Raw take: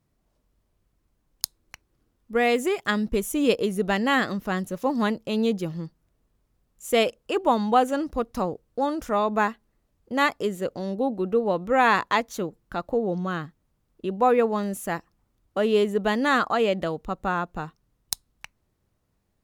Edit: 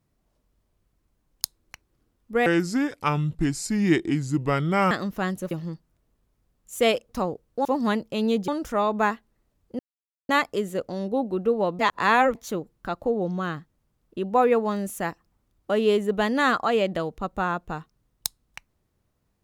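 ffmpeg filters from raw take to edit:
-filter_complex "[0:a]asplit=10[a][b][c][d][e][f][g][h][i][j];[a]atrim=end=2.464[k];[b]atrim=start=2.46:end=4.2,asetpts=PTS-STARTPTS,asetrate=31311,aresample=44100,atrim=end_sample=108076,asetpts=PTS-STARTPTS[l];[c]atrim=start=4.196:end=4.802[m];[d]atrim=start=5.628:end=7.212[n];[e]atrim=start=8.288:end=8.852[o];[f]atrim=start=4.798:end=5.632[p];[g]atrim=start=8.848:end=10.16,asetpts=PTS-STARTPTS,afade=t=out:st=1.308:d=0.004:c=hsin,apad=pad_dur=0.5[q];[h]atrim=start=10.16:end=11.662,asetpts=PTS-STARTPTS,afade=t=in:d=0.004:c=hsin[r];[i]atrim=start=11.658:end=12.222,asetpts=PTS-STARTPTS,areverse[s];[j]atrim=start=12.218[t];[k][l]acrossfade=d=0.004:c1=hsin:c2=hsin[u];[u][m]acrossfade=d=0.004:c1=hsin:c2=hsin[v];[v][n]acrossfade=d=0.004:c1=hsin:c2=hsin[w];[w][o]acrossfade=d=0.004:c1=hsin:c2=hsin[x];[x][p]acrossfade=d=0.004:c1=hsin:c2=hsin[y];[q][r]concat=n=2:v=0:a=1[z];[y][z]acrossfade=d=0.004:c1=hsin:c2=hsin[aa];[aa][s]acrossfade=d=0.004:c1=hsin:c2=hsin[ab];[ab][t]acrossfade=d=0.004:c1=hsin:c2=hsin"

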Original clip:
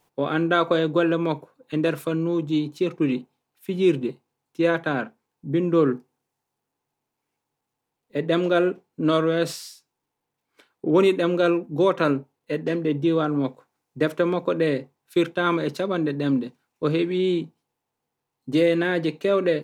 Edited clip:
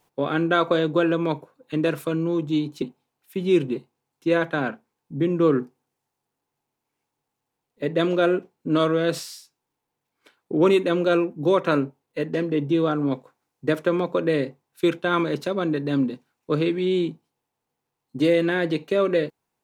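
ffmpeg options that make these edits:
-filter_complex "[0:a]asplit=2[a][b];[a]atrim=end=2.822[c];[b]atrim=start=3.148[d];[c][d]acrossfade=d=0.004:c1=hsin:c2=hsin"

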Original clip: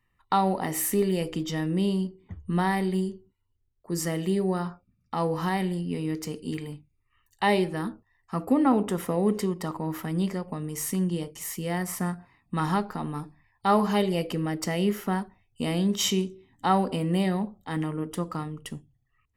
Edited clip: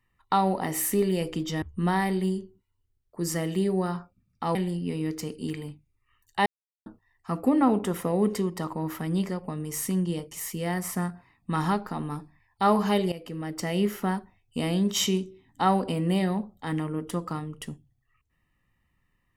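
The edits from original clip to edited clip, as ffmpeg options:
-filter_complex "[0:a]asplit=6[a][b][c][d][e][f];[a]atrim=end=1.622[g];[b]atrim=start=2.328:end=5.262[h];[c]atrim=start=5.588:end=7.5,asetpts=PTS-STARTPTS,afade=t=out:st=1.908:d=0.004:c=hsin[i];[d]atrim=start=7.5:end=7.9,asetpts=PTS-STARTPTS,volume=0[j];[e]atrim=start=7.9:end=14.16,asetpts=PTS-STARTPTS,afade=t=in:d=0.004:c=hsin,afade=t=out:st=6.256:d=0.004:c=hsin:silence=0.199526[k];[f]atrim=start=14.16,asetpts=PTS-STARTPTS,afade=t=in:d=0.69:silence=0.199526[l];[g][h]acrossfade=d=0.004:c1=hsin:c2=hsin[m];[i][j][k][l]concat=n=4:v=0:a=1[n];[m][n]acrossfade=d=0.004:c1=hsin:c2=hsin"

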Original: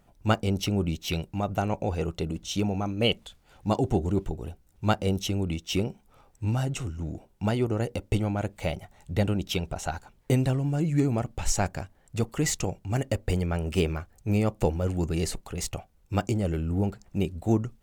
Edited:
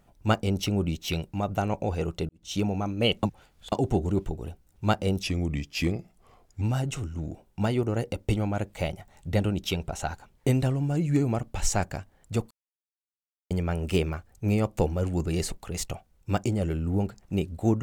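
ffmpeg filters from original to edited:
-filter_complex "[0:a]asplit=8[a][b][c][d][e][f][g][h];[a]atrim=end=2.29,asetpts=PTS-STARTPTS,afade=t=out:st=2.286:d=0.004:c=hsin[i];[b]atrim=start=2.29:end=3.232,asetpts=PTS-STARTPTS,afade=t=in:d=0.26:c=qua[j];[c]atrim=start=3.228:end=3.722,asetpts=PTS-STARTPTS,areverse[k];[d]atrim=start=3.718:end=5.234[l];[e]atrim=start=5.23:end=6.45,asetpts=PTS-STARTPTS,asetrate=38808,aresample=44100[m];[f]atrim=start=6.446:end=12.34,asetpts=PTS-STARTPTS,afade=t=out:st=5.89:d=0.004:c=hsin[n];[g]atrim=start=12.34:end=13.34,asetpts=PTS-STARTPTS,volume=0[o];[h]atrim=start=13.34,asetpts=PTS-STARTPTS,afade=t=in:d=0.004:c=hsin[p];[i][j]concat=n=2:v=0:a=1[q];[q][k]acrossfade=d=0.004:c1=hsin:c2=hsin[r];[r][l]acrossfade=d=0.004:c1=hsin:c2=hsin[s];[s][m]acrossfade=d=0.004:c1=hsin:c2=hsin[t];[n][o][p]concat=n=3:v=0:a=1[u];[t][u]acrossfade=d=0.004:c1=hsin:c2=hsin"

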